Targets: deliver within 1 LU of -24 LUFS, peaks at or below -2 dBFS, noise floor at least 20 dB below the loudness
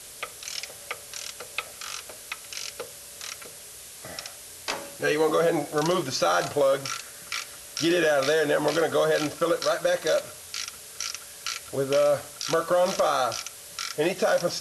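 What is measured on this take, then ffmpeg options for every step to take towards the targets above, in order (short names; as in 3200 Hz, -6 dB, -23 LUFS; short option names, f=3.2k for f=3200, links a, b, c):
noise floor -44 dBFS; noise floor target -47 dBFS; loudness -26.5 LUFS; peak -12.5 dBFS; loudness target -24.0 LUFS
-> -af "afftdn=nr=6:nf=-44"
-af "volume=2.5dB"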